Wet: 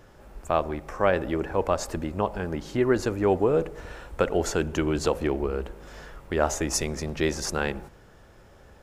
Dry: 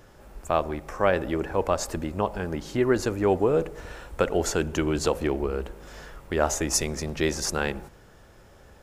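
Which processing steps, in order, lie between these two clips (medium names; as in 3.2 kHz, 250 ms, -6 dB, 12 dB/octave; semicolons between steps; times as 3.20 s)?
treble shelf 4.9 kHz -4.5 dB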